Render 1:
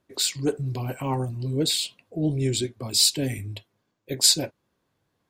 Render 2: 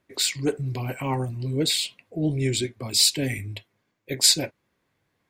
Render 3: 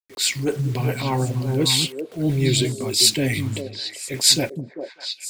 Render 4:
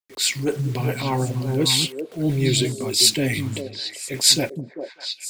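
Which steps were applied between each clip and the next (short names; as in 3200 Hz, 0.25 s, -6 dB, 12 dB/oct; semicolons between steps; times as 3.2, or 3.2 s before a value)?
bell 2100 Hz +8.5 dB 0.59 oct
requantised 8-bit, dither none; transient shaper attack -7 dB, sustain +1 dB; delay with a stepping band-pass 0.198 s, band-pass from 180 Hz, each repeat 1.4 oct, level -1.5 dB; gain +5 dB
bell 75 Hz -6.5 dB 0.77 oct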